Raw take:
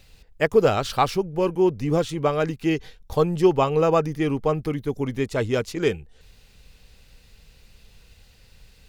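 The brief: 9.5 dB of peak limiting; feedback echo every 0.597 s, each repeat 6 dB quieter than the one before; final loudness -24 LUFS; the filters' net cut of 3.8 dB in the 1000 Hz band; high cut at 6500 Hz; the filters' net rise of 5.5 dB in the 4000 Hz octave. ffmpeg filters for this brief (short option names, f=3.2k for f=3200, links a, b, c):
-af "lowpass=6.5k,equalizer=f=1k:t=o:g=-5.5,equalizer=f=4k:t=o:g=8,alimiter=limit=-15.5dB:level=0:latency=1,aecho=1:1:597|1194|1791|2388|2985|3582:0.501|0.251|0.125|0.0626|0.0313|0.0157,volume=1.5dB"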